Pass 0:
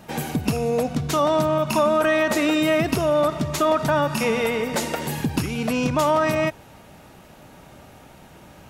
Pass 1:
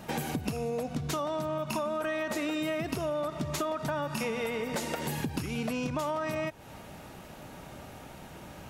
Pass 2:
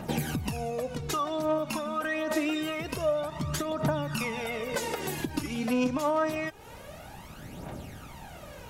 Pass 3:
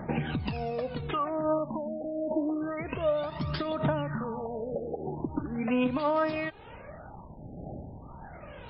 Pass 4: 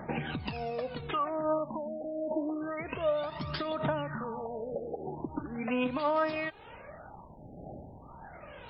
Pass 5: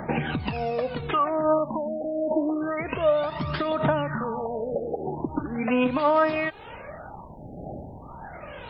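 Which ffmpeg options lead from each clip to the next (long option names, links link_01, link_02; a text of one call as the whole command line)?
ffmpeg -i in.wav -af "acompressor=threshold=-30dB:ratio=6" out.wav
ffmpeg -i in.wav -af "aphaser=in_gain=1:out_gain=1:delay=4.1:decay=0.6:speed=0.26:type=triangular" out.wav
ffmpeg -i in.wav -af "afftfilt=real='re*lt(b*sr/1024,820*pow(5500/820,0.5+0.5*sin(2*PI*0.36*pts/sr)))':imag='im*lt(b*sr/1024,820*pow(5500/820,0.5+0.5*sin(2*PI*0.36*pts/sr)))':win_size=1024:overlap=0.75" out.wav
ffmpeg -i in.wav -af "lowshelf=frequency=370:gain=-7" out.wav
ffmpeg -i in.wav -filter_complex "[0:a]acrossover=split=3300[link_01][link_02];[link_02]acompressor=threshold=-58dB:ratio=4:attack=1:release=60[link_03];[link_01][link_03]amix=inputs=2:normalize=0,volume=8dB" out.wav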